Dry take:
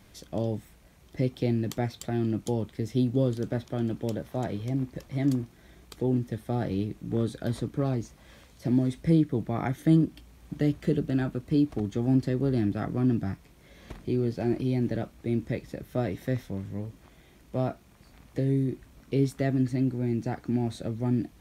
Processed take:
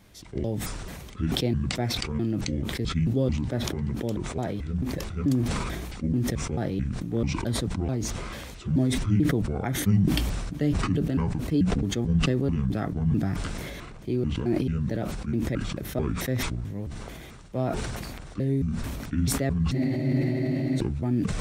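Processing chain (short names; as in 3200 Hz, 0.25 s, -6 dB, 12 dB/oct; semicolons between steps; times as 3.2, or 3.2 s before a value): trilling pitch shifter -8 st, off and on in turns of 0.219 s; spectral freeze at 19.76, 1.01 s; sustainer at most 25 dB/s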